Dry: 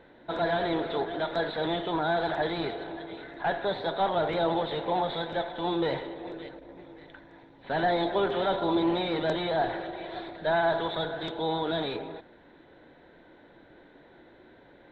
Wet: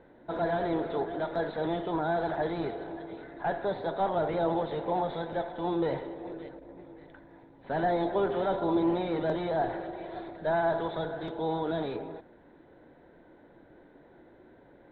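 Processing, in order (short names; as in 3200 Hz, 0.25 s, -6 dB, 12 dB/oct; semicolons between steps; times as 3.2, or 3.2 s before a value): LPF 1000 Hz 6 dB/oct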